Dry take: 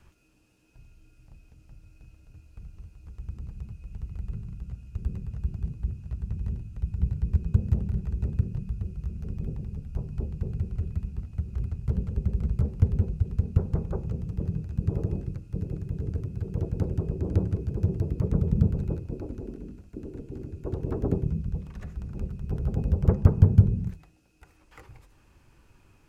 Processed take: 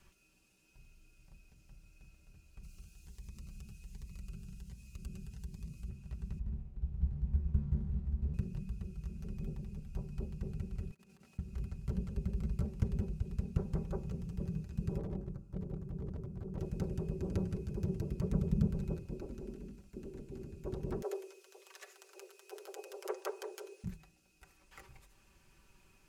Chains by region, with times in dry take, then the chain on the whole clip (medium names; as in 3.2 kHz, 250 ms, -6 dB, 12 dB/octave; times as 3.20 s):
2.63–5.89 s: treble shelf 2.1 kHz +9.5 dB + compression 1.5:1, threshold -38 dBFS + Shepard-style phaser rising 1.3 Hz
6.39–8.34 s: tilt EQ -3 dB/octave + hysteresis with a dead band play -36.5 dBFS + feedback comb 72 Hz, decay 0.81 s, mix 80%
10.91–11.39 s: high-pass 360 Hz + compressor with a negative ratio -56 dBFS, ratio -0.5
14.98–16.59 s: resonant high shelf 1.6 kHz -12.5 dB, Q 1.5 + hard clipper -25 dBFS
21.02–23.84 s: steep high-pass 370 Hz 72 dB/octave + treble shelf 2.3 kHz +8.5 dB
whole clip: treble shelf 2.2 kHz +9 dB; comb 5.2 ms, depth 51%; trim -8.5 dB